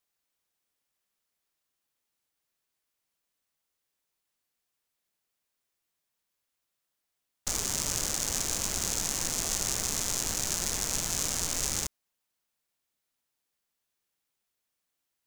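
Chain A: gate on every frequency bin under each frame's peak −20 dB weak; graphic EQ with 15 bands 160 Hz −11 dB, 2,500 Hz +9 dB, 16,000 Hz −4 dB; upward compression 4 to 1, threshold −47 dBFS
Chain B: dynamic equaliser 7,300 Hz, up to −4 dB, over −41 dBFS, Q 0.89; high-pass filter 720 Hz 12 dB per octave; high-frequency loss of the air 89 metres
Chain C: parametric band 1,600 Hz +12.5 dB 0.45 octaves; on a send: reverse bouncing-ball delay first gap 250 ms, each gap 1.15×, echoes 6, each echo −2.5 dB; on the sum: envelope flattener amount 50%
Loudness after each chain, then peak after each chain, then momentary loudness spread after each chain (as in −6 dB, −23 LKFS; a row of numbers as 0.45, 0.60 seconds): −40.0, −38.0, −25.0 LKFS; −17.5, −18.5, −8.0 dBFS; 3, 2, 8 LU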